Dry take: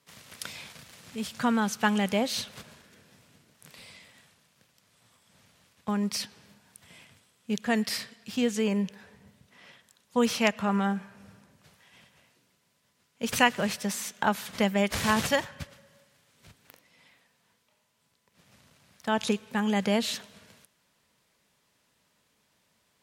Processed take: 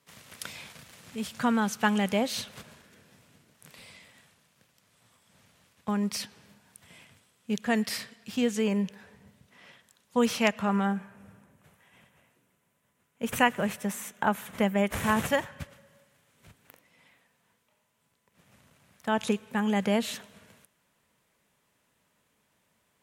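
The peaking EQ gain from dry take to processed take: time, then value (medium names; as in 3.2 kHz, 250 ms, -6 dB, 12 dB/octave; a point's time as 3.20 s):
peaking EQ 4.7 kHz 0.91 oct
10.67 s -3 dB
11.18 s -14.5 dB
15.19 s -14.5 dB
15.60 s -7.5 dB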